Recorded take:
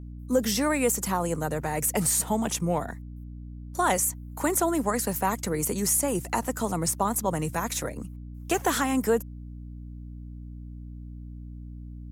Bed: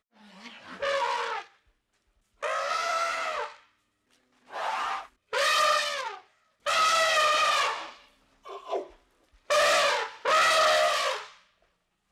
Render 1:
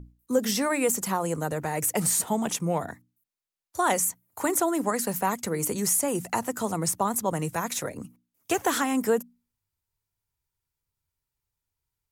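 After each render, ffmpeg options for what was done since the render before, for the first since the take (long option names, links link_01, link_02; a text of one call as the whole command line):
ffmpeg -i in.wav -af "bandreject=frequency=60:width_type=h:width=6,bandreject=frequency=120:width_type=h:width=6,bandreject=frequency=180:width_type=h:width=6,bandreject=frequency=240:width_type=h:width=6,bandreject=frequency=300:width_type=h:width=6" out.wav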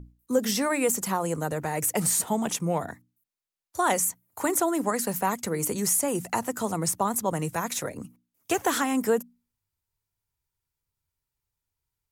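ffmpeg -i in.wav -af anull out.wav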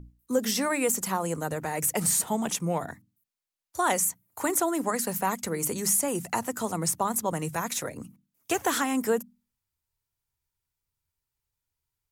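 ffmpeg -i in.wav -af "equalizer=frequency=440:width=0.51:gain=-2,bandreject=frequency=50:width_type=h:width=6,bandreject=frequency=100:width_type=h:width=6,bandreject=frequency=150:width_type=h:width=6,bandreject=frequency=200:width_type=h:width=6" out.wav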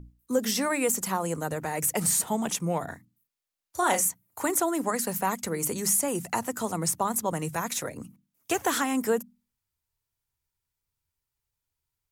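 ffmpeg -i in.wav -filter_complex "[0:a]asettb=1/sr,asplit=3[link_01][link_02][link_03];[link_01]atrim=end=2.844[link_04];[link_02]atrim=start=2.84:end=4.09,asetpts=PTS-STARTPTS,afade=type=in:duration=0.004:curve=qsin,afade=type=out:start_time=1.246:duration=0.004:curve=qsin,asplit=2[link_05][link_06];[link_06]adelay=34,volume=-6.5dB[link_07];[link_05][link_07]amix=inputs=2:normalize=0,atrim=end_sample=55125[link_08];[link_03]atrim=start=4.086[link_09];[link_04][link_08]acrossfade=duration=0.004:curve1=hsin:curve2=qsin[link_10];[link_10][link_09]acrossfade=duration=0.004:curve1=qsin:curve2=hsin" out.wav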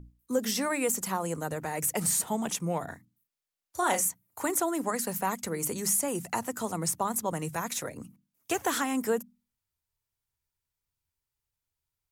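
ffmpeg -i in.wav -af "volume=-2.5dB" out.wav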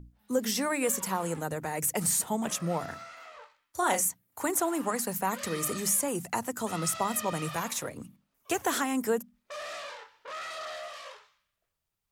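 ffmpeg -i in.wav -i bed.wav -filter_complex "[1:a]volume=-17dB[link_01];[0:a][link_01]amix=inputs=2:normalize=0" out.wav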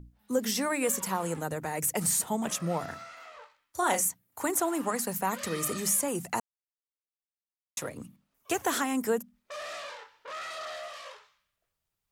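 ffmpeg -i in.wav -filter_complex "[0:a]asplit=3[link_01][link_02][link_03];[link_01]atrim=end=6.4,asetpts=PTS-STARTPTS,afade=type=out:start_time=6.396:duration=0.004:curve=hsin[link_04];[link_02]atrim=start=6.4:end=7.77,asetpts=PTS-STARTPTS,volume=0[link_05];[link_03]atrim=start=7.77,asetpts=PTS-STARTPTS,afade=type=in:duration=0.004:curve=hsin[link_06];[link_04][link_05][link_06]concat=n=3:v=0:a=1" out.wav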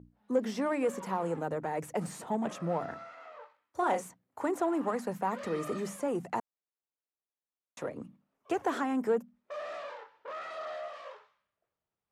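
ffmpeg -i in.wav -filter_complex "[0:a]asplit=2[link_01][link_02];[link_02]aeval=exprs='0.0316*(abs(mod(val(0)/0.0316+3,4)-2)-1)':channel_layout=same,volume=-10dB[link_03];[link_01][link_03]amix=inputs=2:normalize=0,bandpass=frequency=480:width_type=q:width=0.56:csg=0" out.wav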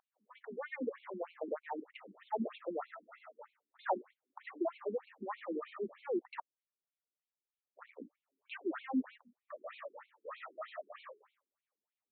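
ffmpeg -i in.wav -af "afftfilt=real='re*between(b*sr/1024,280*pow(3100/280,0.5+0.5*sin(2*PI*3.2*pts/sr))/1.41,280*pow(3100/280,0.5+0.5*sin(2*PI*3.2*pts/sr))*1.41)':imag='im*between(b*sr/1024,280*pow(3100/280,0.5+0.5*sin(2*PI*3.2*pts/sr))/1.41,280*pow(3100/280,0.5+0.5*sin(2*PI*3.2*pts/sr))*1.41)':win_size=1024:overlap=0.75" out.wav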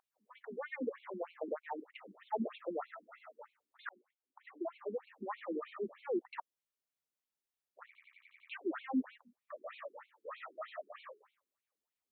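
ffmpeg -i in.wav -filter_complex "[0:a]asettb=1/sr,asplit=3[link_01][link_02][link_03];[link_01]atrim=end=1.534[link_04];[link_02]atrim=start=1.53:end=1.94,asetpts=PTS-STARTPTS,afade=type=in:duration=0.004:curve=qsin,afade=type=out:start_time=0.406:duration=0.004:curve=qsin,lowshelf=frequency=180:gain=-9.5[link_05];[link_03]atrim=start=1.936[link_06];[link_04][link_05]acrossfade=duration=0.004:curve1=hsin:curve2=qsin[link_07];[link_07][link_06]acrossfade=duration=0.004:curve1=qsin:curve2=hsin,asplit=9[link_08][link_09][link_10][link_11][link_12][link_13][link_14][link_15][link_16];[link_08]atrim=end=3.89,asetpts=PTS-STARTPTS,afade=type=out:start_time=3.886:duration=0.004:curve=hsin[link_17];[link_09]atrim=start=3.89:end=7.952,asetpts=PTS-STARTPTS,afade=type=in:duration=1.35[link_18];[link_10]atrim=start=7.858:end=7.952[link_19];[link_11]atrim=start=7.858:end=7.952[link_20];[link_12]atrim=start=7.858:end=7.952[link_21];[link_13]atrim=start=7.858:end=7.952[link_22];[link_14]atrim=start=7.858:end=7.952[link_23];[link_15]atrim=start=7.858:end=7.952[link_24];[link_16]atrim=start=8.488[link_25];[link_17][link_18]concat=n=2:v=0:a=1[link_26];[link_26][link_19]acrossfade=duration=0.004:curve1=hsin:curve2=hsin[link_27];[link_27][link_20]acrossfade=duration=0.004:curve1=hsin:curve2=hsin[link_28];[link_28][link_21]acrossfade=duration=0.004:curve1=hsin:curve2=hsin[link_29];[link_29][link_22]acrossfade=duration=0.004:curve1=hsin:curve2=hsin[link_30];[link_30][link_23]acrossfade=duration=0.004:curve1=hsin:curve2=hsin[link_31];[link_31][link_24]acrossfade=duration=0.004:curve1=hsin:curve2=hsin[link_32];[link_32][link_25]acrossfade=duration=0.004:curve1=hsin:curve2=hsin" out.wav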